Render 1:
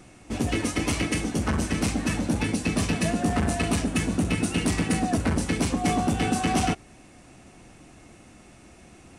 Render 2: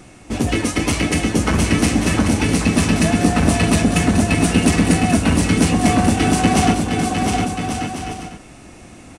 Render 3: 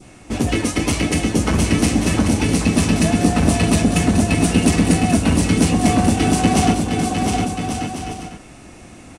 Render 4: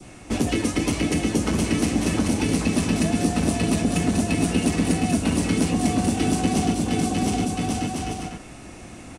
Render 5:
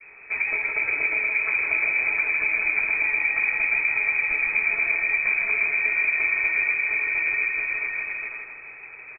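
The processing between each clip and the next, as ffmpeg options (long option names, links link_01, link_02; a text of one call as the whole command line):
ffmpeg -i in.wav -af "aecho=1:1:710|1136|1392|1545|1637:0.631|0.398|0.251|0.158|0.1,volume=7dB" out.wav
ffmpeg -i in.wav -af "adynamicequalizer=threshold=0.0141:dfrequency=1600:dqfactor=1:tfrequency=1600:tqfactor=1:attack=5:release=100:ratio=0.375:range=2:mode=cutabove:tftype=bell" out.wav
ffmpeg -i in.wav -filter_complex "[0:a]acrossover=split=180|450|2900[link_01][link_02][link_03][link_04];[link_01]acompressor=threshold=-29dB:ratio=4[link_05];[link_02]acompressor=threshold=-21dB:ratio=4[link_06];[link_03]acompressor=threshold=-32dB:ratio=4[link_07];[link_04]acompressor=threshold=-32dB:ratio=4[link_08];[link_05][link_06][link_07][link_08]amix=inputs=4:normalize=0" out.wav
ffmpeg -i in.wav -af "lowpass=frequency=2200:width_type=q:width=0.5098,lowpass=frequency=2200:width_type=q:width=0.6013,lowpass=frequency=2200:width_type=q:width=0.9,lowpass=frequency=2200:width_type=q:width=2.563,afreqshift=-2600,aecho=1:1:161|322|483|644|805:0.596|0.256|0.11|0.0474|0.0204,volume=-3dB" out.wav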